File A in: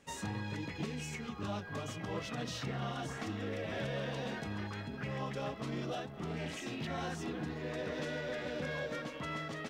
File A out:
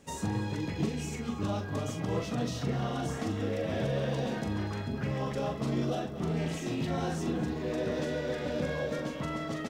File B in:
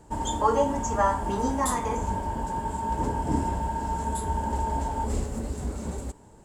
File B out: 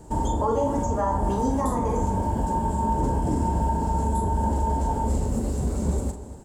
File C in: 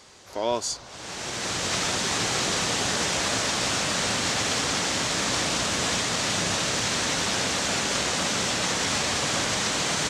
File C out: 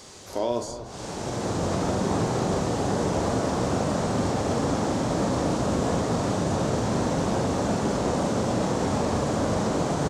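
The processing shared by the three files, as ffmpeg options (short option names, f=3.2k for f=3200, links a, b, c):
-filter_complex "[0:a]equalizer=f=2k:t=o:w=2.5:g=-7.5,acrossover=split=1200[a][b];[a]alimiter=level_in=1dB:limit=-24dB:level=0:latency=1,volume=-1dB[c];[b]acompressor=threshold=-50dB:ratio=5[d];[c][d]amix=inputs=2:normalize=0,asplit=2[e][f];[f]adelay=42,volume=-7.5dB[g];[e][g]amix=inputs=2:normalize=0,asplit=2[h][i];[i]adelay=239.1,volume=-13dB,highshelf=f=4k:g=-5.38[j];[h][j]amix=inputs=2:normalize=0,volume=8dB"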